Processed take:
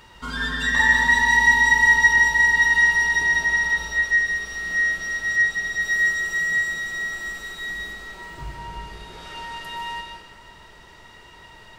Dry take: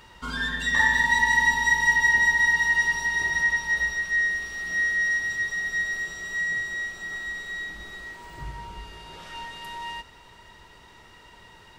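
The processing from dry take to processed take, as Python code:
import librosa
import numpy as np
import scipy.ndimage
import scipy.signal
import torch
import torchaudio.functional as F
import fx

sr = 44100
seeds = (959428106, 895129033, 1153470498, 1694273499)

y = fx.high_shelf(x, sr, hz=7900.0, db=9.0, at=(5.82, 7.93))
y = fx.rev_freeverb(y, sr, rt60_s=1.3, hf_ratio=0.8, predelay_ms=100, drr_db=2.0)
y = y * librosa.db_to_amplitude(1.5)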